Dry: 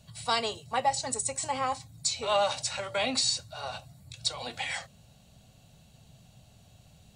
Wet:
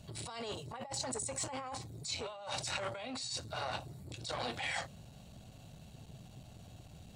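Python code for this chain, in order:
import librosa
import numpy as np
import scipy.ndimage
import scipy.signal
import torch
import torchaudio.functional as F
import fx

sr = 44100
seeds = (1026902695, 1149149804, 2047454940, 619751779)

y = fx.high_shelf(x, sr, hz=2200.0, db=-5.0)
y = fx.over_compress(y, sr, threshold_db=-39.0, ratio=-1.0)
y = fx.transformer_sat(y, sr, knee_hz=1300.0)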